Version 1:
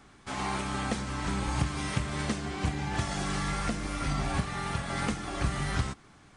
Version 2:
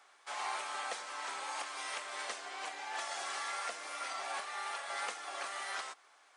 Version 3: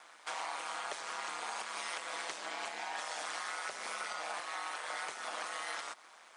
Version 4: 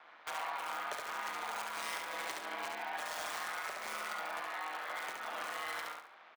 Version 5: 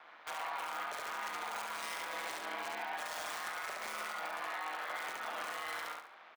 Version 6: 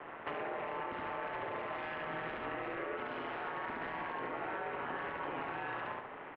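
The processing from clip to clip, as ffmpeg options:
ffmpeg -i in.wav -af "highpass=frequency=560:width=0.5412,highpass=frequency=560:width=1.3066,volume=-4dB" out.wav
ffmpeg -i in.wav -af "acompressor=threshold=-44dB:ratio=6,aeval=exprs='val(0)*sin(2*PI*80*n/s)':channel_layout=same,volume=9.5dB" out.wav
ffmpeg -i in.wav -filter_complex "[0:a]acrossover=split=120|1000|3700[link_01][link_02][link_03][link_04];[link_04]acrusher=bits=6:mix=0:aa=0.000001[link_05];[link_01][link_02][link_03][link_05]amix=inputs=4:normalize=0,aecho=1:1:70|140|210|280:0.668|0.221|0.0728|0.024,volume=-1dB" out.wav
ffmpeg -i in.wav -af "alimiter=level_in=7dB:limit=-24dB:level=0:latency=1:release=36,volume=-7dB,volume=1.5dB" out.wav
ffmpeg -i in.wav -af "acompressor=threshold=-45dB:ratio=6,highpass=frequency=430:width_type=q:width=0.5412,highpass=frequency=430:width_type=q:width=1.307,lowpass=frequency=3100:width_type=q:width=0.5176,lowpass=frequency=3100:width_type=q:width=0.7071,lowpass=frequency=3100:width_type=q:width=1.932,afreqshift=-350,volume=9dB" out.wav

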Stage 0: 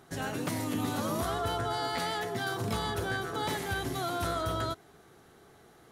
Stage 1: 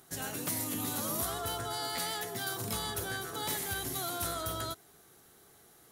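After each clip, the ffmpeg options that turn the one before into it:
ffmpeg -i in.wav -af "aemphasis=mode=production:type=75fm,volume=-5.5dB" out.wav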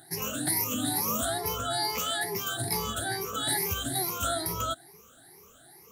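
ffmpeg -i in.wav -af "afftfilt=real='re*pow(10,23/40*sin(2*PI*(0.81*log(max(b,1)*sr/1024/100)/log(2)-(2.3)*(pts-256)/sr)))':imag='im*pow(10,23/40*sin(2*PI*(0.81*log(max(b,1)*sr/1024/100)/log(2)-(2.3)*(pts-256)/sr)))':win_size=1024:overlap=0.75" out.wav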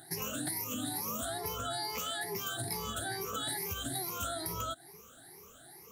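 ffmpeg -i in.wav -af "acompressor=threshold=-34dB:ratio=6" out.wav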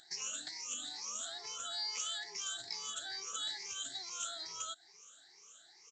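ffmpeg -i in.wav -af "aderivative,aresample=16000,aresample=44100,volume=6dB" out.wav

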